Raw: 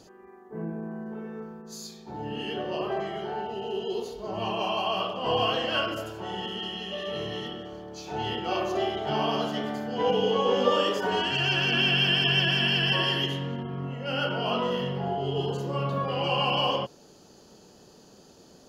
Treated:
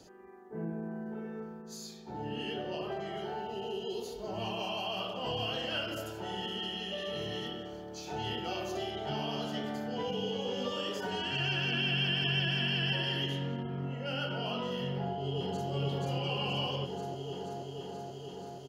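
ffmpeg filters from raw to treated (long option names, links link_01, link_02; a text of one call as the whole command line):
ffmpeg -i in.wav -filter_complex "[0:a]asettb=1/sr,asplit=3[link_01][link_02][link_03];[link_01]atrim=end=3.174[link_04];[link_02]atrim=start=3.17:end=8.91,asetpts=PTS-STARTPTS,afade=type=in:duration=0.004:curve=qsin,afade=type=out:start_time=5.736:duration=0.004:curve=qsin,highshelf=frequency=6300:gain=6[link_05];[link_03]atrim=start=8.906[link_06];[link_04][link_05]acrossfade=duration=0.004:curve1=hsin:curve2=qsin[link_07];[link_07][link_06]acrossfade=duration=0.004:curve1=qsin:curve2=hsin,asplit=2[link_08][link_09];[link_09]afade=type=in:start_time=14.92:duration=0.01,afade=type=out:start_time=15.7:duration=0.01,aecho=0:1:480|960|1440|1920|2400|2880|3360|3840|4320|4800|5280|5760:0.944061|0.708046|0.531034|0.398276|0.298707|0.22403|0.168023|0.126017|0.0945127|0.0708845|0.0531634|0.0398725[link_10];[link_08][link_10]amix=inputs=2:normalize=0,acrossover=split=3300[link_11][link_12];[link_12]acompressor=threshold=-39dB:ratio=4:attack=1:release=60[link_13];[link_11][link_13]amix=inputs=2:normalize=0,bandreject=frequency=1100:width=9.7,acrossover=split=200|3000[link_14][link_15][link_16];[link_15]acompressor=threshold=-32dB:ratio=6[link_17];[link_14][link_17][link_16]amix=inputs=3:normalize=0,volume=-3dB" out.wav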